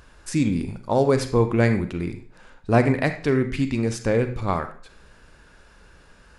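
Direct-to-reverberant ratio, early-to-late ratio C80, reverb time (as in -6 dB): 7.5 dB, 13.5 dB, 0.50 s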